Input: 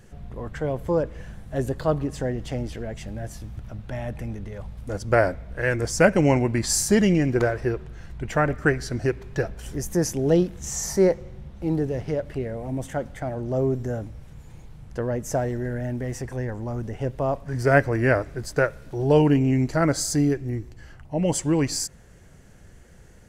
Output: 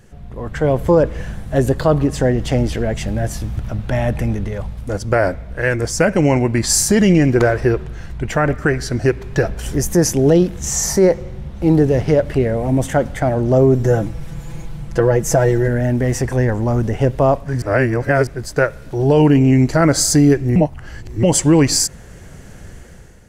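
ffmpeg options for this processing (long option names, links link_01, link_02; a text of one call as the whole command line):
ffmpeg -i in.wav -filter_complex "[0:a]asettb=1/sr,asplit=3[link_01][link_02][link_03];[link_01]atrim=end=13.834[link_04];[link_02]atrim=start=13.83:end=15.68,asetpts=PTS-STARTPTS,afade=type=in:duration=0.004:curve=qsin,afade=type=out:start_time=1.846:duration=0.004:curve=qsin,aecho=1:1:6:0.77,atrim=end_sample=81585[link_05];[link_03]atrim=start=15.676[link_06];[link_04][link_05]acrossfade=duration=0.004:curve1=hsin:curve2=qsin[link_07];[link_07][link_06]acrossfade=duration=0.004:curve1=qsin:curve2=hsin,asplit=5[link_08][link_09][link_10][link_11][link_12];[link_08]atrim=end=17.622[link_13];[link_09]atrim=start=17.618:end=18.272,asetpts=PTS-STARTPTS,areverse[link_14];[link_10]atrim=start=18.268:end=20.562[link_15];[link_11]atrim=start=20.558:end=21.232,asetpts=PTS-STARTPTS,areverse[link_16];[link_12]atrim=start=21.228[link_17];[link_13][link_14]acrossfade=duration=0.004:curve1=hsin:curve2=hsin[link_18];[link_18][link_15]acrossfade=duration=0.004:curve1=hsin:curve2=hsin[link_19];[link_19][link_16]acrossfade=duration=0.004:curve1=hsin:curve2=hsin[link_20];[link_20][link_17]acrossfade=duration=0.004:curve1=hsin:curve2=hsin,dynaudnorm=framelen=120:gausssize=9:maxgain=10dB,alimiter=level_in=6.5dB:limit=-1dB:release=50:level=0:latency=1,volume=-3.5dB" out.wav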